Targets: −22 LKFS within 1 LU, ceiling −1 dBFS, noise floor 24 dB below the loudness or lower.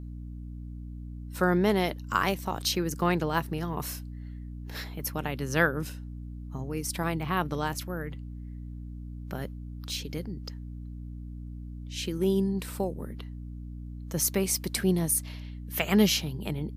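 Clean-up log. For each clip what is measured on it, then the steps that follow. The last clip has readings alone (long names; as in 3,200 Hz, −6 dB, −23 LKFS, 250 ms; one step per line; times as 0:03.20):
mains hum 60 Hz; hum harmonics up to 300 Hz; level of the hum −37 dBFS; integrated loudness −29.5 LKFS; sample peak −10.0 dBFS; target loudness −22.0 LKFS
→ hum removal 60 Hz, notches 5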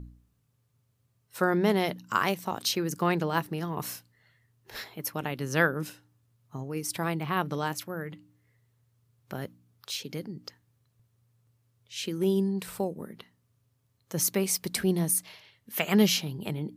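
mains hum none found; integrated loudness −29.0 LKFS; sample peak −10.0 dBFS; target loudness −22.0 LKFS
→ level +7 dB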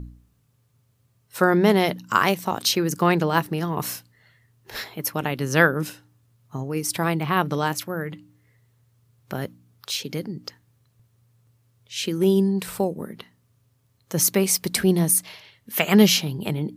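integrated loudness −22.5 LKFS; sample peak −3.0 dBFS; background noise floor −65 dBFS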